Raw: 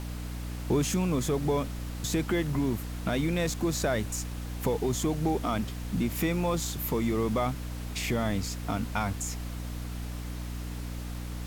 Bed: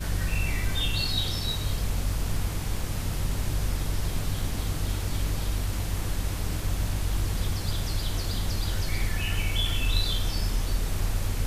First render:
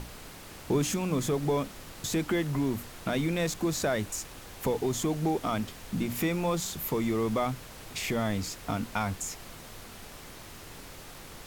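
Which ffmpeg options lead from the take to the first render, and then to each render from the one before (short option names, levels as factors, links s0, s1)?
-af "bandreject=f=60:t=h:w=6,bandreject=f=120:t=h:w=6,bandreject=f=180:t=h:w=6,bandreject=f=240:t=h:w=6,bandreject=f=300:t=h:w=6"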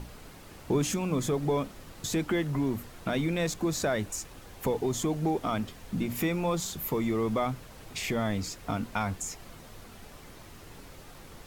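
-af "afftdn=nr=6:nf=-47"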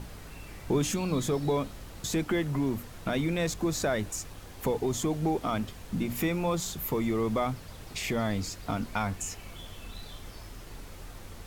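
-filter_complex "[1:a]volume=0.106[s0];[0:a][s0]amix=inputs=2:normalize=0"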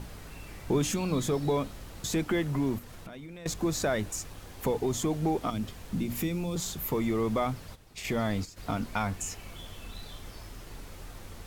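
-filter_complex "[0:a]asettb=1/sr,asplit=3[s0][s1][s2];[s0]atrim=end=2.784[s3];[s1]atrim=start=2.78:end=3.46,asetpts=PTS-STARTPTS,afade=t=in:d=0.004:c=qsin,afade=t=out:st=0.676:d=0.004:c=qsin,acompressor=threshold=0.00891:ratio=8:attack=3.2:release=140:knee=1:detection=peak[s4];[s2]atrim=start=3.456[s5];[s3][s4]acrossfade=d=0.004:c1=hsin:c2=qsin[s6];[s6][s5]acrossfade=d=0.004:c1=qsin:c2=hsin,asettb=1/sr,asplit=3[s7][s8][s9];[s7]atrim=end=5.504[s10];[s8]atrim=start=5.5:end=6.56,asetpts=PTS-STARTPTS,afade=t=in:d=0.004:c=qsin,afade=t=out:st=1.056:d=0.004:c=qsin,acrossover=split=380|3000[s11][s12][s13];[s12]acompressor=threshold=0.00631:ratio=6:attack=3.2:release=140:knee=2.83:detection=peak[s14];[s11][s14][s13]amix=inputs=3:normalize=0[s15];[s9]atrim=start=6.556[s16];[s10][s15]acrossfade=d=0.004:c1=hsin:c2=qsin[s17];[s17][s16]acrossfade=d=0.004:c1=qsin:c2=hsin,asplit=3[s18][s19][s20];[s18]afade=t=out:st=7.74:d=0.02[s21];[s19]agate=range=0.251:threshold=0.0178:ratio=16:release=100:detection=peak,afade=t=in:st=7.74:d=0.02,afade=t=out:st=8.56:d=0.02[s22];[s20]afade=t=in:st=8.56:d=0.02[s23];[s21][s22][s23]amix=inputs=3:normalize=0"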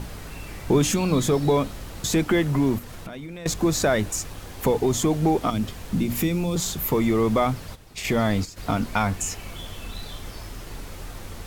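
-af "volume=2.37"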